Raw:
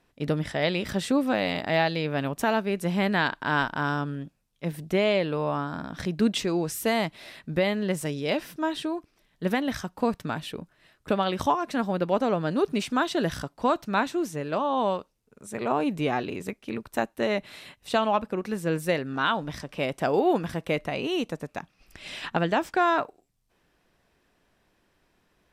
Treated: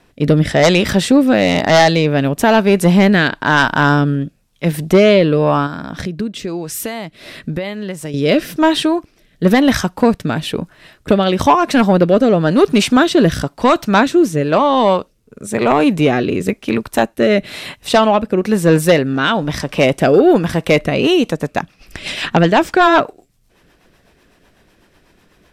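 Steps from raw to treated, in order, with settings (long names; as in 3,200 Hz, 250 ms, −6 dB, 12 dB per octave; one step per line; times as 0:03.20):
0:05.66–0:08.14: downward compressor 6 to 1, threshold −37 dBFS, peak gain reduction 17.5 dB
rotating-speaker cabinet horn 1 Hz, later 8 Hz, at 0:20.64
sine wavefolder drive 8 dB, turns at −8.5 dBFS
level +5.5 dB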